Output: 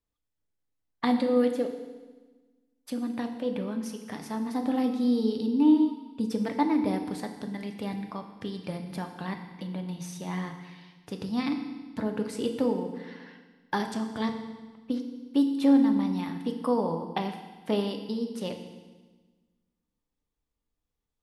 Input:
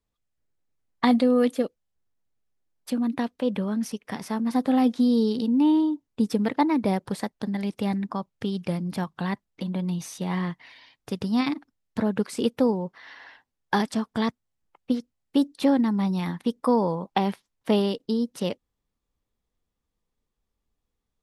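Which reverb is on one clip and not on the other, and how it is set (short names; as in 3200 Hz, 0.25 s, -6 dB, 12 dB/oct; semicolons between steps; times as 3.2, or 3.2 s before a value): FDN reverb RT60 1.3 s, low-frequency decay 1.3×, high-frequency decay 1×, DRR 4.5 dB; gain -6 dB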